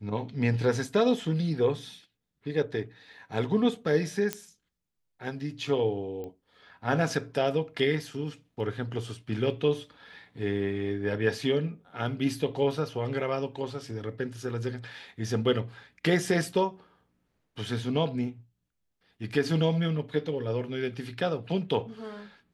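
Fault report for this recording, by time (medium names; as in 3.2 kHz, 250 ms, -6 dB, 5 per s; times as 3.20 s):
4.33 s: pop -13 dBFS
6.24 s: pop -28 dBFS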